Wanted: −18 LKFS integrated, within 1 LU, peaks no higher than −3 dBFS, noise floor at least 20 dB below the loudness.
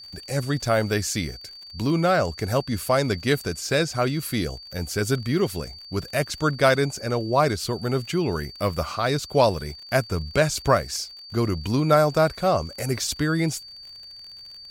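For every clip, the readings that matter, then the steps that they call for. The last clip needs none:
crackle rate 51 per second; interfering tone 4,600 Hz; level of the tone −40 dBFS; integrated loudness −24.0 LKFS; sample peak −5.0 dBFS; target loudness −18.0 LKFS
→ click removal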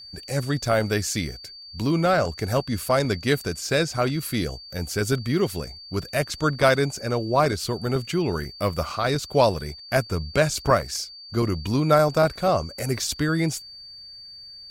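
crackle rate 0.41 per second; interfering tone 4,600 Hz; level of the tone −40 dBFS
→ notch filter 4,600 Hz, Q 30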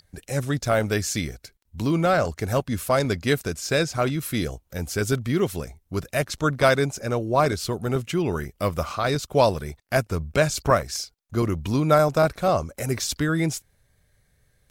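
interfering tone none found; integrated loudness −24.0 LKFS; sample peak −5.0 dBFS; target loudness −18.0 LKFS
→ level +6 dB
brickwall limiter −3 dBFS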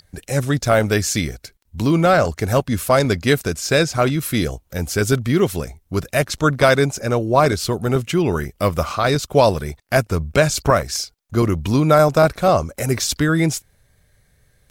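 integrated loudness −18.5 LKFS; sample peak −3.0 dBFS; background noise floor −60 dBFS

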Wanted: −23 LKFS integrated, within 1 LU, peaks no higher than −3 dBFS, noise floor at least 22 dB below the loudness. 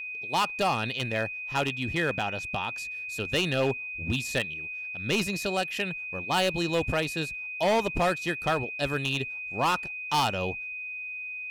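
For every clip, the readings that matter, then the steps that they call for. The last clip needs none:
share of clipped samples 1.6%; peaks flattened at −19.5 dBFS; interfering tone 2,500 Hz; level of the tone −34 dBFS; integrated loudness −28.5 LKFS; sample peak −19.5 dBFS; target loudness −23.0 LKFS
→ clipped peaks rebuilt −19.5 dBFS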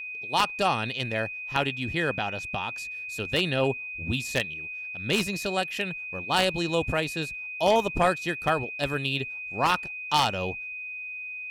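share of clipped samples 0.0%; interfering tone 2,500 Hz; level of the tone −34 dBFS
→ notch filter 2,500 Hz, Q 30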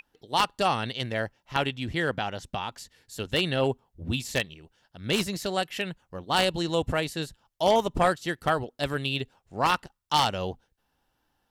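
interfering tone none found; integrated loudness −28.0 LKFS; sample peak −10.0 dBFS; target loudness −23.0 LKFS
→ level +5 dB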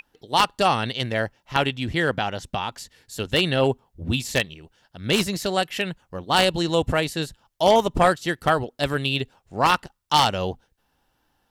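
integrated loudness −23.0 LKFS; sample peak −5.0 dBFS; background noise floor −71 dBFS

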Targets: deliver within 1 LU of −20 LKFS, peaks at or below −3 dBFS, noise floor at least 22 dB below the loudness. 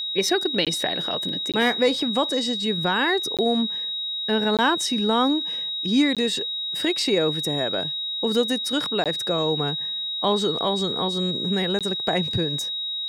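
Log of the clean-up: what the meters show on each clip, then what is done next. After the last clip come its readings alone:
number of dropouts 7; longest dropout 17 ms; interfering tone 3,800 Hz; level of the tone −26 dBFS; integrated loudness −22.5 LKFS; sample peak −8.0 dBFS; target loudness −20.0 LKFS
→ repair the gap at 0:00.65/0:01.52/0:03.37/0:04.57/0:06.15/0:09.04/0:11.79, 17 ms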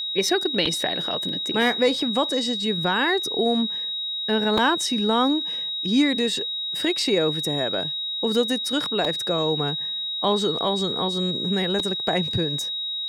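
number of dropouts 0; interfering tone 3,800 Hz; level of the tone −26 dBFS
→ notch filter 3,800 Hz, Q 30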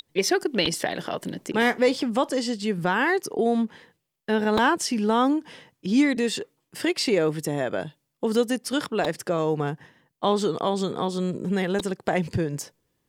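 interfering tone none found; integrated loudness −25.0 LKFS; sample peak −8.5 dBFS; target loudness −20.0 LKFS
→ level +5 dB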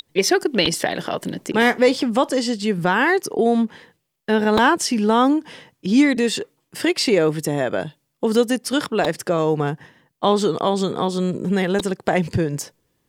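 integrated loudness −20.0 LKFS; sample peak −3.5 dBFS; background noise floor −72 dBFS

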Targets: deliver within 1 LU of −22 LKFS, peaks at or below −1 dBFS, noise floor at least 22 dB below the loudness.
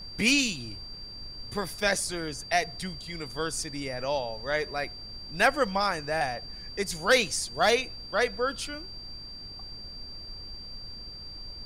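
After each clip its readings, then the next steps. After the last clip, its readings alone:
interfering tone 4,700 Hz; level of the tone −41 dBFS; background noise floor −43 dBFS; target noise floor −51 dBFS; integrated loudness −28.5 LKFS; sample peak −10.5 dBFS; target loudness −22.0 LKFS
→ notch filter 4,700 Hz, Q 30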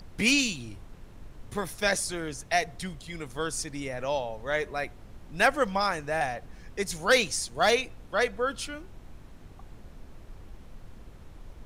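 interfering tone none found; background noise floor −49 dBFS; target noise floor −51 dBFS
→ noise reduction from a noise print 6 dB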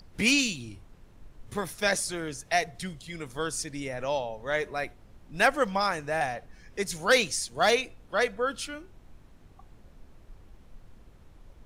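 background noise floor −55 dBFS; integrated loudness −28.5 LKFS; sample peak −10.5 dBFS; target loudness −22.0 LKFS
→ level +6.5 dB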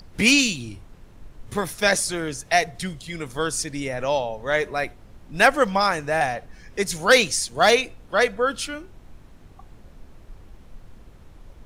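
integrated loudness −22.0 LKFS; sample peak −4.0 dBFS; background noise floor −48 dBFS

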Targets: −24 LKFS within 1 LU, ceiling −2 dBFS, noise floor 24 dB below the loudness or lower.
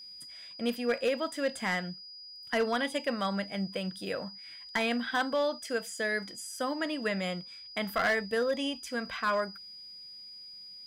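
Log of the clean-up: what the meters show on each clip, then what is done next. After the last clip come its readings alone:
share of clipped samples 0.6%; peaks flattened at −22.0 dBFS; interfering tone 4,900 Hz; level of the tone −45 dBFS; integrated loudness −32.0 LKFS; sample peak −22.0 dBFS; target loudness −24.0 LKFS
→ clipped peaks rebuilt −22 dBFS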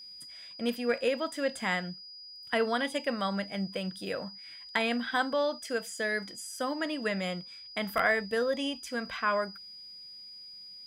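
share of clipped samples 0.0%; interfering tone 4,900 Hz; level of the tone −45 dBFS
→ notch filter 4,900 Hz, Q 30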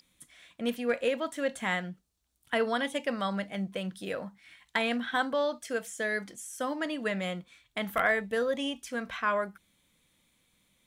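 interfering tone none found; integrated loudness −32.0 LKFS; sample peak −13.0 dBFS; target loudness −24.0 LKFS
→ level +8 dB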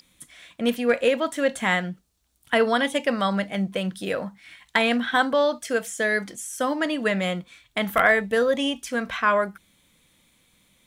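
integrated loudness −24.0 LKFS; sample peak −5.0 dBFS; background noise floor −65 dBFS

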